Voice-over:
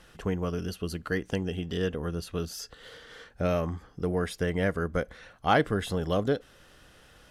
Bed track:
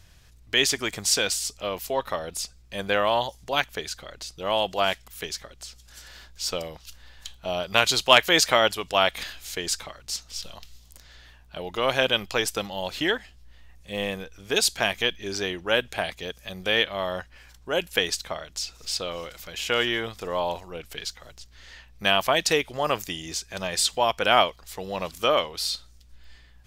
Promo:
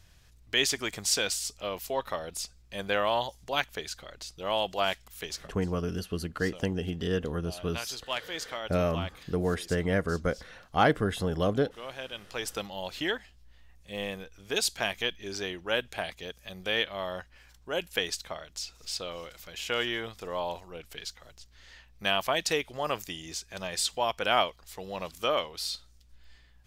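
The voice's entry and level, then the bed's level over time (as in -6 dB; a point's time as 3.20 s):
5.30 s, 0.0 dB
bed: 5.43 s -4.5 dB
5.67 s -17.5 dB
12.14 s -17.5 dB
12.54 s -6 dB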